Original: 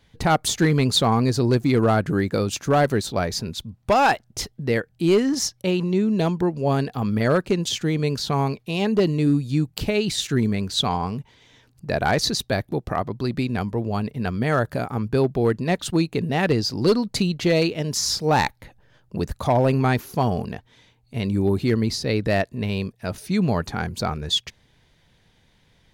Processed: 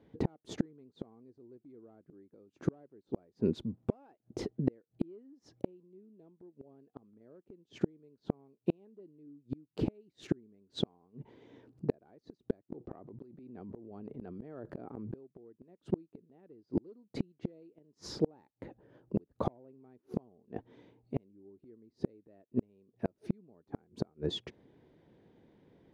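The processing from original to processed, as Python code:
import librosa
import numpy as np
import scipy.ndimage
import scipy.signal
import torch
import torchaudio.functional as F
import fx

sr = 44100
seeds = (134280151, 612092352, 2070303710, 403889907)

y = fx.bandpass_q(x, sr, hz=340.0, q=2.0)
y = fx.gate_flip(y, sr, shuts_db=-25.0, range_db=-40)
y = fx.pre_swell(y, sr, db_per_s=24.0, at=(12.7, 15.33))
y = y * 10.0 ** (8.5 / 20.0)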